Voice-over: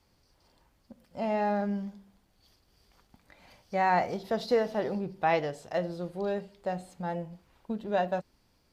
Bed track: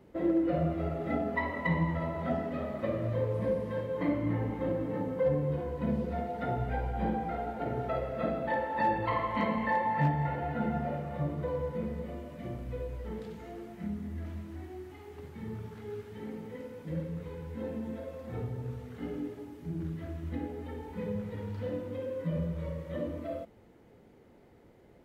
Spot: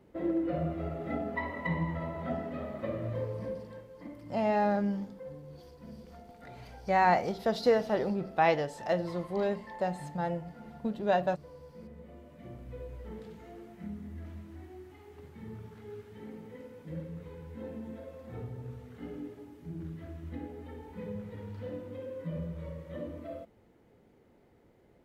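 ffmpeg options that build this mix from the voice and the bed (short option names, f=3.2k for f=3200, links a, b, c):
-filter_complex "[0:a]adelay=3150,volume=1dB[a];[1:a]volume=9.5dB,afade=t=out:st=3.1:d=0.79:silence=0.199526,afade=t=in:st=11.63:d=1.38:silence=0.237137[b];[a][b]amix=inputs=2:normalize=0"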